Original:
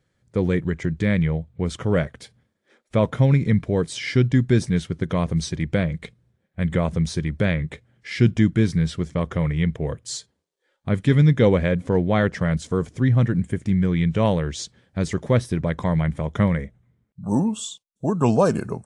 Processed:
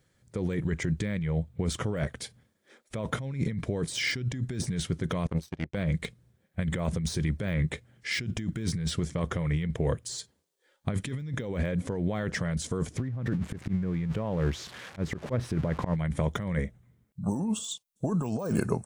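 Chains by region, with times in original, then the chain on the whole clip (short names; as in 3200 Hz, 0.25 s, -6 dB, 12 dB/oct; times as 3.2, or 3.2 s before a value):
5.27–5.75 high shelf 5000 Hz -10 dB + power-law curve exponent 2
12.97–15.96 switching spikes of -18.5 dBFS + LPF 1600 Hz + auto swell 0.152 s
whole clip: de-esser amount 85%; high shelf 6600 Hz +9.5 dB; negative-ratio compressor -25 dBFS, ratio -1; gain -4 dB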